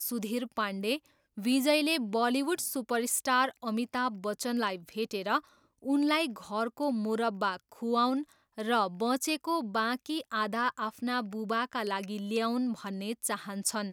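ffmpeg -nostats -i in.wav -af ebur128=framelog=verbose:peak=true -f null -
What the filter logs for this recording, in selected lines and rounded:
Integrated loudness:
  I:         -31.1 LUFS
  Threshold: -41.2 LUFS
Loudness range:
  LRA:         3.2 LU
  Threshold: -51.1 LUFS
  LRA low:   -32.5 LUFS
  LRA high:  -29.3 LUFS
True peak:
  Peak:      -15.0 dBFS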